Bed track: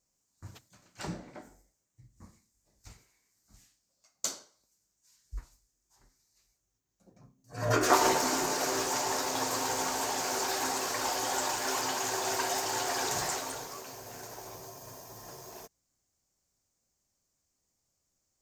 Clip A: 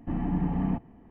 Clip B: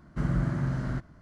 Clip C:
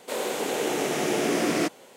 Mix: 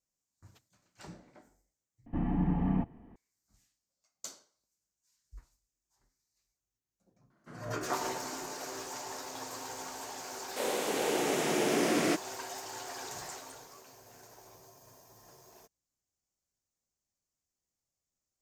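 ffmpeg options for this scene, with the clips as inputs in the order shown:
-filter_complex "[0:a]volume=0.299[s0];[2:a]highpass=310[s1];[s0]asplit=2[s2][s3];[s2]atrim=end=2.064[s4];[1:a]atrim=end=1.1,asetpts=PTS-STARTPTS,volume=0.794[s5];[s3]atrim=start=3.156[s6];[s1]atrim=end=1.21,asetpts=PTS-STARTPTS,volume=0.251,afade=t=in:d=0.004:c=hsin,afade=t=out:st=1.206:d=0.004:c=hsin,adelay=321930S[s7];[3:a]atrim=end=1.96,asetpts=PTS-STARTPTS,volume=0.631,afade=t=in:d=0.004:c=hsin,afade=t=out:st=1.956:d=0.004:c=hsin,adelay=10480[s8];[s4][s5]acrossfade=d=0.004:c1=hsin:c2=hsin[s9];[s9][s6]acrossfade=d=0.004:c1=hsin:c2=hsin[s10];[s10][s7][s8]amix=inputs=3:normalize=0"

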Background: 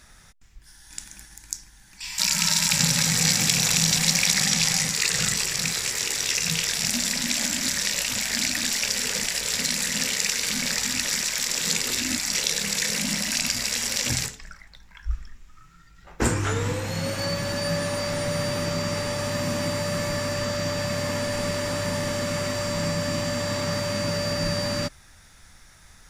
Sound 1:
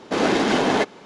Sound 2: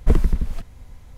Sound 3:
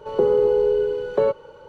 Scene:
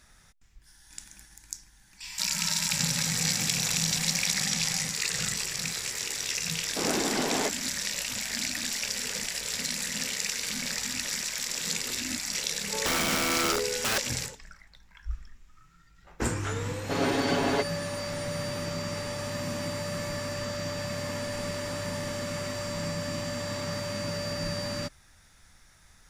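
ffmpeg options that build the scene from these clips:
-filter_complex "[1:a]asplit=2[s0][s1];[0:a]volume=0.473[s2];[3:a]aeval=exprs='(mod(7.94*val(0)+1,2)-1)/7.94':c=same[s3];[s1]aecho=1:1:7.2:0.93[s4];[s0]atrim=end=1.05,asetpts=PTS-STARTPTS,volume=0.316,afade=t=in:d=0.004:c=hsin,afade=t=out:st=1.046:d=0.004:c=hsin,adelay=6650[s5];[s3]atrim=end=1.68,asetpts=PTS-STARTPTS,volume=0.562,afade=t=in:d=0.004:c=hsin,afade=t=out:st=1.676:d=0.004:c=hsin,adelay=12670[s6];[s4]atrim=end=1.05,asetpts=PTS-STARTPTS,volume=0.299,afade=t=in:d=0.004:c=hsin,afade=t=out:st=1.046:d=0.004:c=hsin,adelay=16780[s7];[s2][s5][s6][s7]amix=inputs=4:normalize=0"

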